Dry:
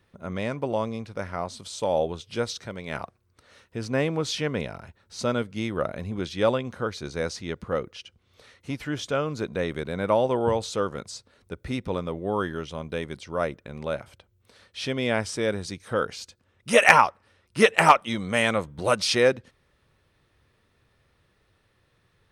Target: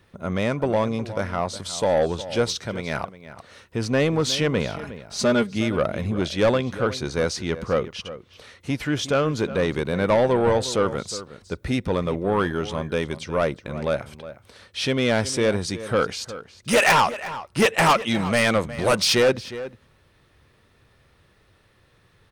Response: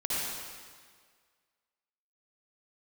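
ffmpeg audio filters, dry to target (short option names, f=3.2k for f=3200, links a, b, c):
-filter_complex "[0:a]asettb=1/sr,asplit=3[a][b][c];[a]atrim=end=4.764[d];[b]atrim=start=4.76:end=5.56,asetpts=PTS-STARTPTS,afade=t=in:d=0.004:c=qsin,afade=t=out:st=0.796:d=0.004:c=qsin,aecho=1:1:4.9:0.72,atrim=end_sample=35280[e];[c]atrim=start=5.556[f];[d][e]acrossfade=d=0.004:c1=hsin:c2=qsin[g];[g][f]acrossfade=d=0.004:c1=qsin:c2=hsin,asoftclip=type=tanh:threshold=-20dB,asplit=2[h][i];[i]adelay=361.5,volume=-14dB,highshelf=f=4k:g=-8.13[j];[h][j]amix=inputs=2:normalize=0,volume=7dB"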